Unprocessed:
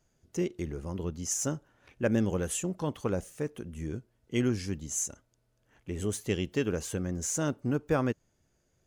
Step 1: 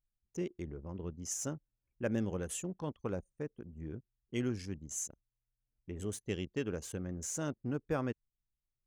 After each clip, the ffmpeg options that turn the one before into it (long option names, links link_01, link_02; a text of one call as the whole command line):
ffmpeg -i in.wav -af "anlmdn=0.251,volume=-7dB" out.wav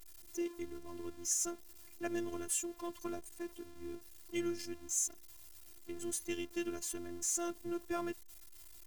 ffmpeg -i in.wav -af "aeval=exprs='val(0)+0.5*0.00422*sgn(val(0))':channel_layout=same,afftfilt=real='hypot(re,im)*cos(PI*b)':imag='0':win_size=512:overlap=0.75,aemphasis=mode=production:type=cd,volume=1dB" out.wav